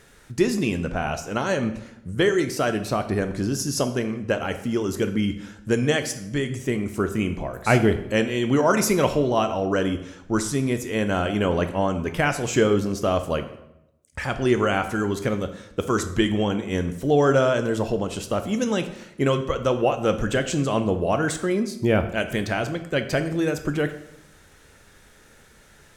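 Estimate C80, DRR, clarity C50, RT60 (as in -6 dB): 14.0 dB, 7.5 dB, 11.5 dB, 0.85 s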